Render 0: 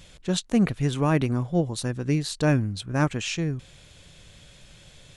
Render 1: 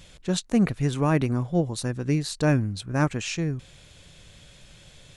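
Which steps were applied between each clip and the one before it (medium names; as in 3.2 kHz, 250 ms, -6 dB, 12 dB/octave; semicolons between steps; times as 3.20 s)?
dynamic bell 3.2 kHz, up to -4 dB, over -51 dBFS, Q 3.3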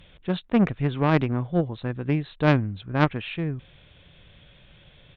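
resampled via 8 kHz; Chebyshev shaper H 3 -12 dB, 5 -30 dB, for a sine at -8.5 dBFS; trim +6.5 dB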